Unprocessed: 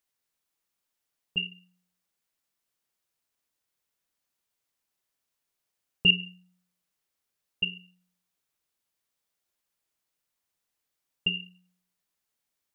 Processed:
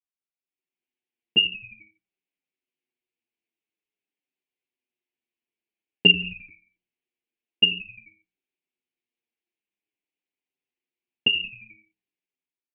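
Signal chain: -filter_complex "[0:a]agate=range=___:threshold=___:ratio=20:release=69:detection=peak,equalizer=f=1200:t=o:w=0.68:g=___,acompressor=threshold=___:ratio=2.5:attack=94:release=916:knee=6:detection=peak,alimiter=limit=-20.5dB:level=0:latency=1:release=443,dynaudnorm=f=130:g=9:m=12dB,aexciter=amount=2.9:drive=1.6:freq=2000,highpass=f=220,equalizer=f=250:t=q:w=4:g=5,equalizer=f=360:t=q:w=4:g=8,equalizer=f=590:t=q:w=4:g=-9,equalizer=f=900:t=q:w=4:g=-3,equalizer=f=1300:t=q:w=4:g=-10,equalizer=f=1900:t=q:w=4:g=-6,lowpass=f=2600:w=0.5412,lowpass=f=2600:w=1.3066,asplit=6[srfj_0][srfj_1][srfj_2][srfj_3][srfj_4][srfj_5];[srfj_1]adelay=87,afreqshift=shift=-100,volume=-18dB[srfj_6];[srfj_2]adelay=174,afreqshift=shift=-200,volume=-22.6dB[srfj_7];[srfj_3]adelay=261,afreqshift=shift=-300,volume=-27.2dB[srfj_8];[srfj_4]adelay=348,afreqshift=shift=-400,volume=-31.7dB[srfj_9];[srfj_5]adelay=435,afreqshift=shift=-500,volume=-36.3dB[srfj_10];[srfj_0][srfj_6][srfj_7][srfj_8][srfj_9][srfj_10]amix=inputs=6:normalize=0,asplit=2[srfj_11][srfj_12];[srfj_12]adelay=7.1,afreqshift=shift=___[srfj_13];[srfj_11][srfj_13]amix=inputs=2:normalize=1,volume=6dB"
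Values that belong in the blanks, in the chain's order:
-18dB, -51dB, -9.5, -27dB, -0.5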